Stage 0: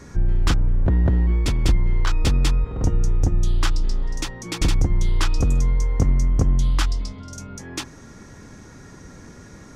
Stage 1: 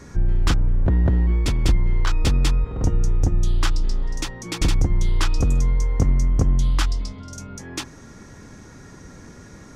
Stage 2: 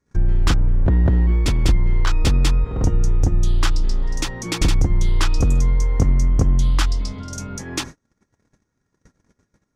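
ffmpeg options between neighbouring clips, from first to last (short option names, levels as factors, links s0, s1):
-af anull
-filter_complex "[0:a]agate=range=0.0141:threshold=0.0141:ratio=16:detection=peak,asplit=2[s0][s1];[s1]acompressor=threshold=0.0501:ratio=6,volume=0.891[s2];[s0][s2]amix=inputs=2:normalize=0"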